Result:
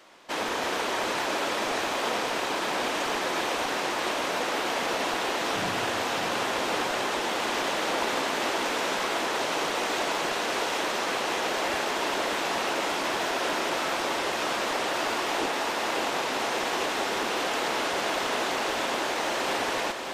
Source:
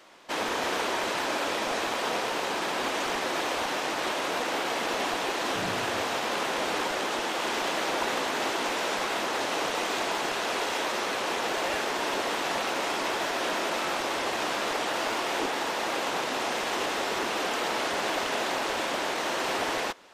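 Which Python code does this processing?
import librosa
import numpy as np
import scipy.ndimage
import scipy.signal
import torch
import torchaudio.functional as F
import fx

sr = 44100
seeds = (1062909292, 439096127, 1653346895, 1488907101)

y = fx.echo_feedback(x, sr, ms=587, feedback_pct=57, wet_db=-7.0)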